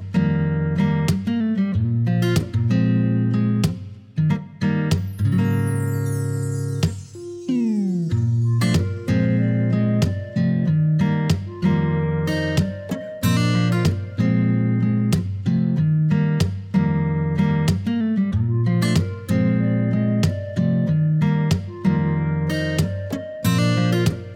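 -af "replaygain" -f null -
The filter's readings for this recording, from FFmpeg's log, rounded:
track_gain = +3.9 dB
track_peak = 0.326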